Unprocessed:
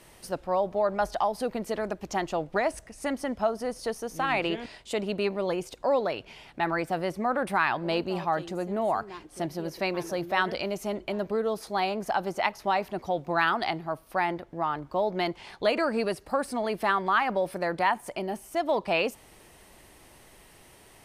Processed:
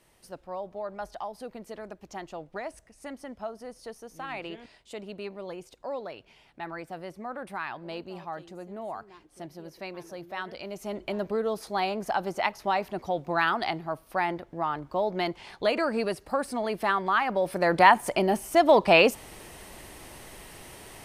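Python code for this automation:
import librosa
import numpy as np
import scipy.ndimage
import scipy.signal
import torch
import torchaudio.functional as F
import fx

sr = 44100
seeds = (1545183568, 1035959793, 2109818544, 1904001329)

y = fx.gain(x, sr, db=fx.line((10.52, -10.0), (11.06, -0.5), (17.32, -0.5), (17.82, 8.0)))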